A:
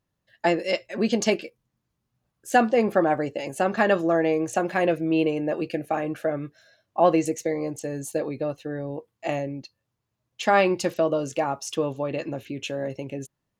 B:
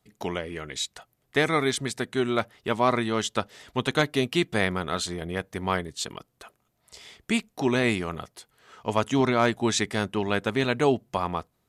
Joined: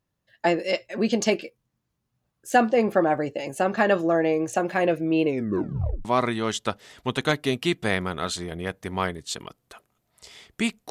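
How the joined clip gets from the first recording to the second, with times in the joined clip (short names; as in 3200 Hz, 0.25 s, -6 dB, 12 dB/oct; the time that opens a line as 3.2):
A
5.25 tape stop 0.80 s
6.05 switch to B from 2.75 s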